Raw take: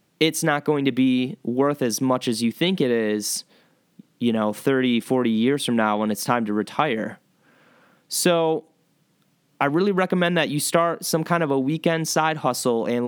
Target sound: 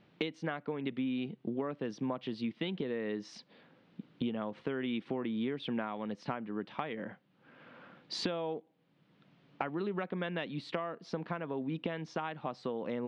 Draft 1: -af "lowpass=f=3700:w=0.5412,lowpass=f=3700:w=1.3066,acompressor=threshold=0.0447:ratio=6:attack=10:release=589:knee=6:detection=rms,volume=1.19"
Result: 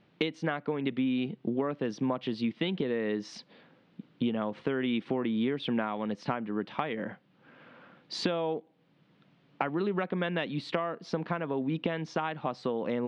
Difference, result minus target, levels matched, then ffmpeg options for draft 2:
compression: peak gain reduction -5.5 dB
-af "lowpass=f=3700:w=0.5412,lowpass=f=3700:w=1.3066,acompressor=threshold=0.0211:ratio=6:attack=10:release=589:knee=6:detection=rms,volume=1.19"

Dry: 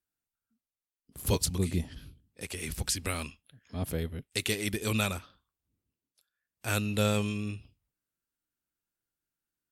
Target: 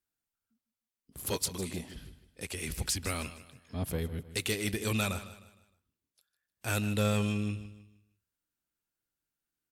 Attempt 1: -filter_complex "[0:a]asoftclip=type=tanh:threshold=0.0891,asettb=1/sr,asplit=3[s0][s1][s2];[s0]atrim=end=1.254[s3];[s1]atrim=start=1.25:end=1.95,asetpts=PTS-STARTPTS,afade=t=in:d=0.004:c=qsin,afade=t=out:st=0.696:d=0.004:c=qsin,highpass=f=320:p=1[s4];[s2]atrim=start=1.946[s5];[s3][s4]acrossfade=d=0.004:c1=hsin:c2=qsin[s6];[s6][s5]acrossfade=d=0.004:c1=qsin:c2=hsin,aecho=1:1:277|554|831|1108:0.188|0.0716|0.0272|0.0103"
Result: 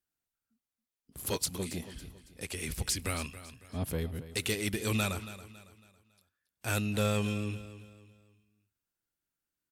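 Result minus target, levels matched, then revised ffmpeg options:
echo 123 ms late
-filter_complex "[0:a]asoftclip=type=tanh:threshold=0.0891,asettb=1/sr,asplit=3[s0][s1][s2];[s0]atrim=end=1.254[s3];[s1]atrim=start=1.25:end=1.95,asetpts=PTS-STARTPTS,afade=t=in:d=0.004:c=qsin,afade=t=out:st=0.696:d=0.004:c=qsin,highpass=f=320:p=1[s4];[s2]atrim=start=1.946[s5];[s3][s4]acrossfade=d=0.004:c1=hsin:c2=qsin[s6];[s6][s5]acrossfade=d=0.004:c1=qsin:c2=hsin,aecho=1:1:154|308|462|616:0.188|0.0716|0.0272|0.0103"

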